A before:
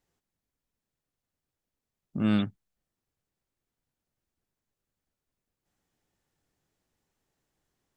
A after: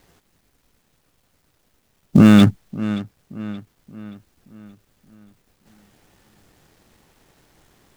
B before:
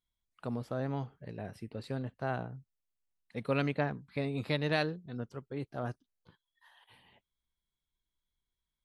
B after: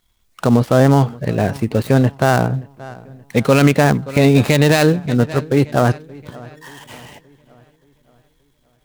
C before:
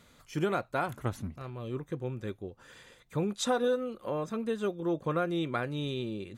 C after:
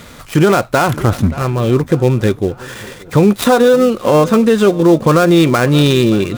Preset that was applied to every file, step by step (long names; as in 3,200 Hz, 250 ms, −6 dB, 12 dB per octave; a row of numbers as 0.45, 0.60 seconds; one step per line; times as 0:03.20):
gap after every zero crossing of 0.093 ms
on a send: feedback echo with a low-pass in the loop 576 ms, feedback 47%, low-pass 4,800 Hz, level −23 dB
on the sum: boost into a limiter +25.5 dB
level −1 dB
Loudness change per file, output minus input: +12.5, +21.0, +21.0 LU